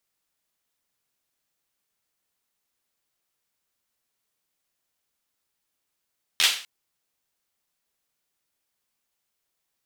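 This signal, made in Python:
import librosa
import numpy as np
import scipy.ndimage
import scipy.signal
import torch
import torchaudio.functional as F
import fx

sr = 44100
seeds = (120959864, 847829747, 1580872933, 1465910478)

y = fx.drum_clap(sr, seeds[0], length_s=0.25, bursts=4, spacing_ms=12, hz=3100.0, decay_s=0.42)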